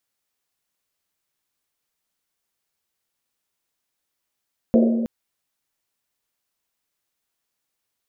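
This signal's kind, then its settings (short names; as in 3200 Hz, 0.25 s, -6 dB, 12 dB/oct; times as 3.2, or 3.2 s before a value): Risset drum length 0.32 s, pitch 230 Hz, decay 2.02 s, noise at 490 Hz, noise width 290 Hz, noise 25%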